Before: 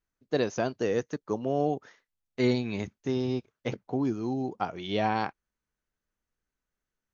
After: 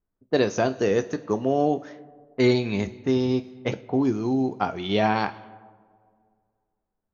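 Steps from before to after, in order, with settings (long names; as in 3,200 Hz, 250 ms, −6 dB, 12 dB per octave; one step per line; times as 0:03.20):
coupled-rooms reverb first 0.26 s, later 2.2 s, from −18 dB, DRR 9 dB
low-pass that shuts in the quiet parts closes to 820 Hz, open at −28 dBFS
level +5.5 dB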